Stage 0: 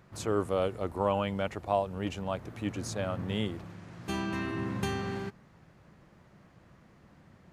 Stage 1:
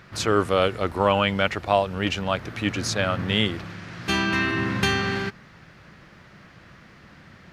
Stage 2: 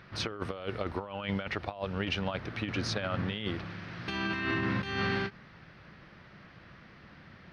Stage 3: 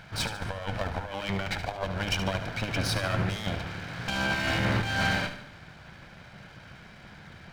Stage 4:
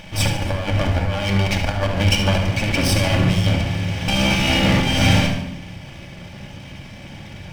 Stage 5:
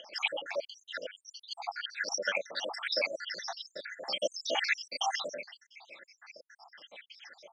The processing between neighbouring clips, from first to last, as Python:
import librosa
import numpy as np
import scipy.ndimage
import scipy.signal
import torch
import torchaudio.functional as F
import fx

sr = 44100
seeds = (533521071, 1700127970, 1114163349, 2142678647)

y1 = fx.band_shelf(x, sr, hz=2700.0, db=8.5, octaves=2.4)
y1 = F.gain(torch.from_numpy(y1), 7.5).numpy()
y2 = fx.over_compress(y1, sr, threshold_db=-25.0, ratio=-0.5)
y2 = scipy.signal.savgol_filter(y2, 15, 4, mode='constant')
y2 = fx.end_taper(y2, sr, db_per_s=340.0)
y2 = F.gain(torch.from_numpy(y2), -7.0).numpy()
y3 = fx.lower_of_two(y2, sr, delay_ms=1.3)
y3 = fx.echo_feedback(y3, sr, ms=73, feedback_pct=50, wet_db=-10.5)
y3 = F.gain(torch.from_numpy(y3), 6.0).numpy()
y4 = fx.lower_of_two(y3, sr, delay_ms=0.36)
y4 = fx.room_shoebox(y4, sr, seeds[0], volume_m3=2700.0, walls='furnished', distance_m=2.4)
y4 = F.gain(torch.from_numpy(y4), 9.0).numpy()
y5 = fx.spec_dropout(y4, sr, seeds[1], share_pct=79)
y5 = fx.phaser_stages(y5, sr, stages=6, low_hz=660.0, high_hz=2900.0, hz=3.8, feedback_pct=45)
y5 = scipy.signal.sosfilt(scipy.signal.ellip(3, 1.0, 60, [520.0, 5800.0], 'bandpass', fs=sr, output='sos'), y5)